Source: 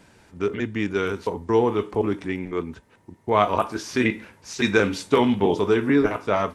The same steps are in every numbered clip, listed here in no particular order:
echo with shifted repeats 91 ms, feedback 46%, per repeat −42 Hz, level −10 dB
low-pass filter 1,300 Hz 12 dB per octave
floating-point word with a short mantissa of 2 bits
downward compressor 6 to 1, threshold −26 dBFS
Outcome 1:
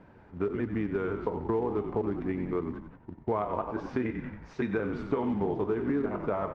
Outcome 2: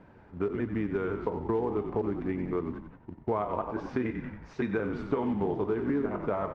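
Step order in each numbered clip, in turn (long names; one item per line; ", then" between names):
echo with shifted repeats, then downward compressor, then floating-point word with a short mantissa, then low-pass filter
floating-point word with a short mantissa, then echo with shifted repeats, then downward compressor, then low-pass filter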